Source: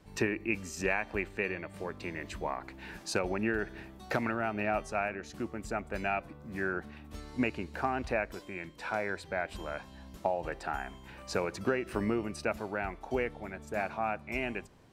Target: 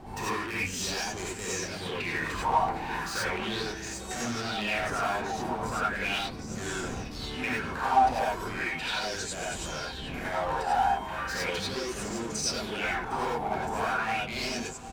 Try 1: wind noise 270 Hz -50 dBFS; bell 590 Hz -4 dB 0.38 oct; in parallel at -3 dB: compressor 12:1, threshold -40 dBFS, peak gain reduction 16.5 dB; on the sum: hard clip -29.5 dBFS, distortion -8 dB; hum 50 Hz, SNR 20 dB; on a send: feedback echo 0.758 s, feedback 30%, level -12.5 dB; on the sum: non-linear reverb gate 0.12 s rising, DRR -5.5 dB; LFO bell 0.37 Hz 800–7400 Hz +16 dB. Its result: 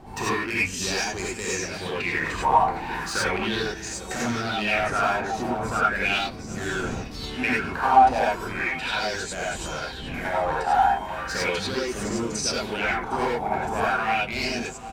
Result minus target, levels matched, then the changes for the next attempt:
compressor: peak gain reduction -6.5 dB; hard clip: distortion -5 dB
change: compressor 12:1, threshold -47 dBFS, peak gain reduction 23 dB; change: hard clip -38.5 dBFS, distortion -3 dB

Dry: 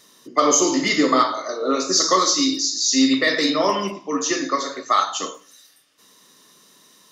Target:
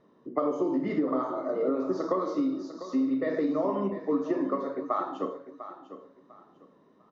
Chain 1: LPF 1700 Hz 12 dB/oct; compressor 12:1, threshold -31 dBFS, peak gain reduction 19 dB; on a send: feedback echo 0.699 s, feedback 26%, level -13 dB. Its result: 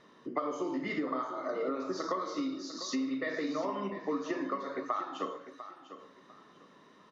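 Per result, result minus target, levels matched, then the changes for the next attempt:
2000 Hz band +10.0 dB; compressor: peak gain reduction +7.5 dB
change: LPF 730 Hz 12 dB/oct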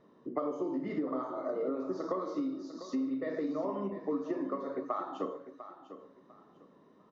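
compressor: peak gain reduction +7 dB
change: compressor 12:1, threshold -23.5 dBFS, peak gain reduction 11 dB

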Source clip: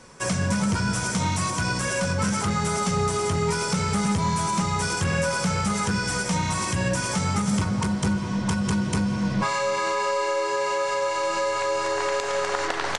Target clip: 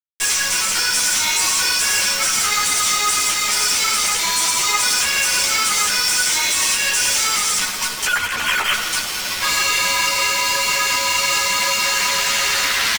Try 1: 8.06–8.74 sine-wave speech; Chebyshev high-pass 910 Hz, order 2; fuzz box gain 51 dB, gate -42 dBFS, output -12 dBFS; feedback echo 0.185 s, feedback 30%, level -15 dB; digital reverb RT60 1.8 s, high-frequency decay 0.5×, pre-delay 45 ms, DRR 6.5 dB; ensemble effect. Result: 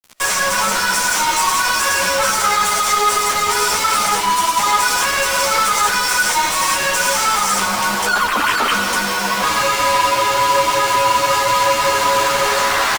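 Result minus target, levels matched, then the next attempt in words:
1000 Hz band +8.5 dB
8.06–8.74 sine-wave speech; Chebyshev high-pass 2700 Hz, order 2; fuzz box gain 51 dB, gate -42 dBFS, output -12 dBFS; feedback echo 0.185 s, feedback 30%, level -15 dB; digital reverb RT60 1.8 s, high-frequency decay 0.5×, pre-delay 45 ms, DRR 6.5 dB; ensemble effect

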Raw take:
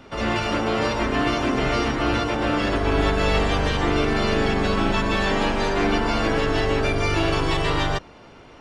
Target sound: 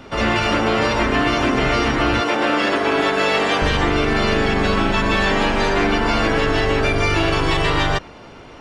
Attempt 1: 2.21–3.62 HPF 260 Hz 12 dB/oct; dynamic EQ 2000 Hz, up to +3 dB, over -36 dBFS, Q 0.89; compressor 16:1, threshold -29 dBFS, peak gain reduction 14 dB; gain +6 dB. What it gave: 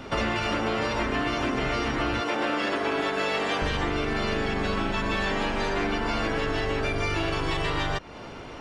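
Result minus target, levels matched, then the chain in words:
compressor: peak gain reduction +9.5 dB
2.21–3.62 HPF 260 Hz 12 dB/oct; dynamic EQ 2000 Hz, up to +3 dB, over -36 dBFS, Q 0.89; compressor 16:1, threshold -19 dBFS, peak gain reduction 4.5 dB; gain +6 dB

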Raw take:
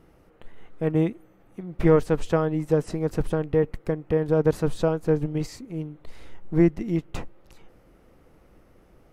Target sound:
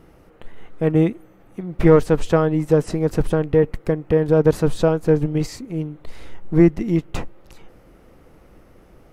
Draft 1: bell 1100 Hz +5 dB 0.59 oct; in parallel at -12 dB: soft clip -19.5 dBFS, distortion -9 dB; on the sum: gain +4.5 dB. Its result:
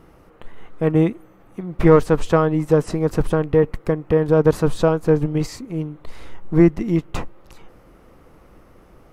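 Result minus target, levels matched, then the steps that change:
1000 Hz band +2.5 dB
remove: bell 1100 Hz +5 dB 0.59 oct

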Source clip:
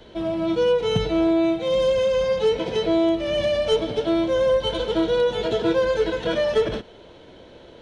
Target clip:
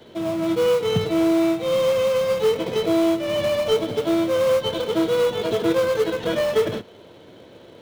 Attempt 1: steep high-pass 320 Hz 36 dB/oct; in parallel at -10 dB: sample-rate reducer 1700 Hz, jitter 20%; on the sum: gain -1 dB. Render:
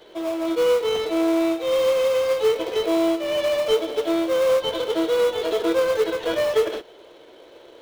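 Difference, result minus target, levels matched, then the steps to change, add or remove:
125 Hz band -14.5 dB
change: steep high-pass 86 Hz 36 dB/oct

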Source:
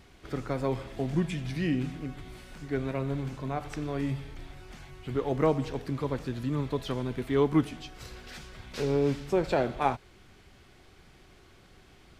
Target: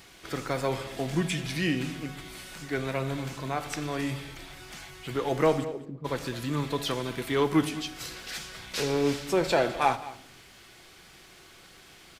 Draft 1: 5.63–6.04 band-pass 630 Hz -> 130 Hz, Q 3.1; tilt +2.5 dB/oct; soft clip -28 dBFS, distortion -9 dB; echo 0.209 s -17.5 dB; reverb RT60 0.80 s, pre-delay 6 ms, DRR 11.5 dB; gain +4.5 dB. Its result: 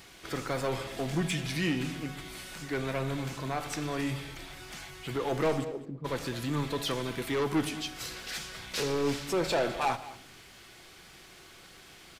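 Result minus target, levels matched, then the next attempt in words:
soft clip: distortion +13 dB
5.63–6.04 band-pass 630 Hz -> 130 Hz, Q 3.1; tilt +2.5 dB/oct; soft clip -16.5 dBFS, distortion -22 dB; echo 0.209 s -17.5 dB; reverb RT60 0.80 s, pre-delay 6 ms, DRR 11.5 dB; gain +4.5 dB

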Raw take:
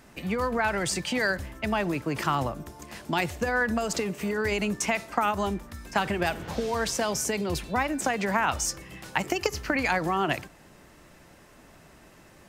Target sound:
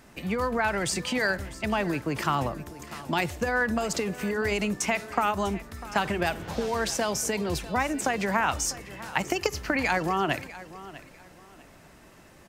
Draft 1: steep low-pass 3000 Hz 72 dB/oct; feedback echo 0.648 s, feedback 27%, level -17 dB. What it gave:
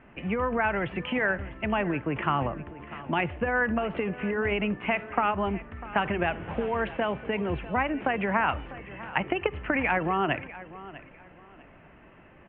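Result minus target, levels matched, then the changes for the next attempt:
4000 Hz band -5.5 dB
remove: steep low-pass 3000 Hz 72 dB/oct

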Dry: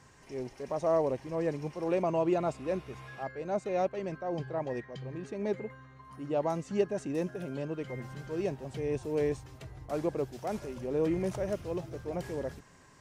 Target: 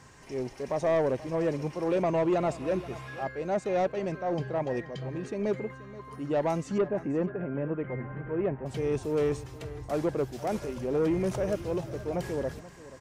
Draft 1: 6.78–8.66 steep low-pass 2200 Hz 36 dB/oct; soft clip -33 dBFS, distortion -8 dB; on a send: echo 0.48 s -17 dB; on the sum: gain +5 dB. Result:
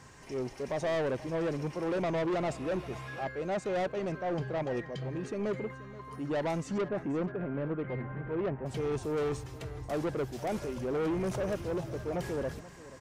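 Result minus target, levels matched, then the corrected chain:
soft clip: distortion +8 dB
6.78–8.66 steep low-pass 2200 Hz 36 dB/oct; soft clip -25 dBFS, distortion -16 dB; on a send: echo 0.48 s -17 dB; on the sum: gain +5 dB

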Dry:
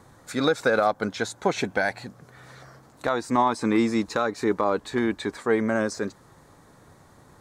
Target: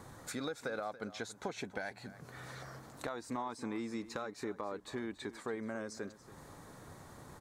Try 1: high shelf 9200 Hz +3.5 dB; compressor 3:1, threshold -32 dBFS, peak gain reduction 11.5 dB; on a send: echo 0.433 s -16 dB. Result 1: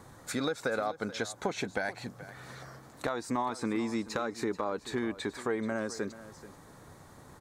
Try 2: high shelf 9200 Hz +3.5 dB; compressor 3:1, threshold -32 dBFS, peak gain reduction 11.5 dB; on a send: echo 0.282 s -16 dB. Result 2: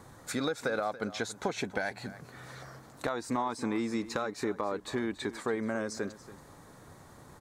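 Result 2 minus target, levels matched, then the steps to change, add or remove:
compressor: peak gain reduction -7.5 dB
change: compressor 3:1, threshold -43.5 dBFS, peak gain reduction 19.5 dB

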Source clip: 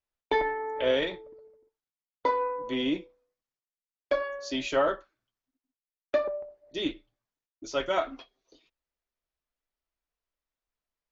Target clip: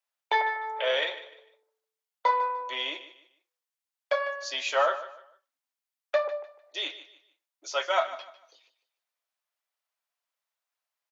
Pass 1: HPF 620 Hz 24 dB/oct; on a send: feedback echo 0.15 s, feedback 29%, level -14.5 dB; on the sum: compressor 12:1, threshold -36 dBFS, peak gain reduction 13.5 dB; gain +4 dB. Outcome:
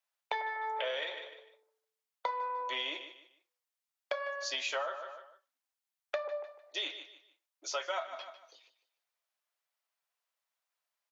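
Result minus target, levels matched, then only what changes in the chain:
compressor: peak gain reduction +13.5 dB
remove: compressor 12:1, threshold -36 dBFS, peak gain reduction 13.5 dB

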